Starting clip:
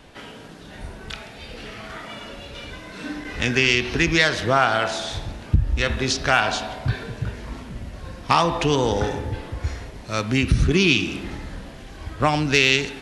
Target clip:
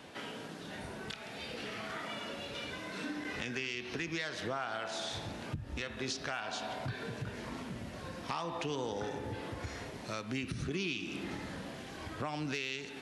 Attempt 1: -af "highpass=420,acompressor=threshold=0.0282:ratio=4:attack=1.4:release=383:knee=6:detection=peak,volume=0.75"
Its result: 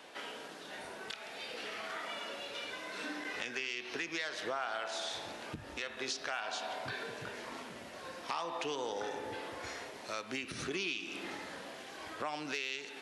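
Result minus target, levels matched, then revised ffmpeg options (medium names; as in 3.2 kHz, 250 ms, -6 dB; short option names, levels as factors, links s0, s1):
125 Hz band -12.0 dB
-af "highpass=140,acompressor=threshold=0.0282:ratio=4:attack=1.4:release=383:knee=6:detection=peak,volume=0.75"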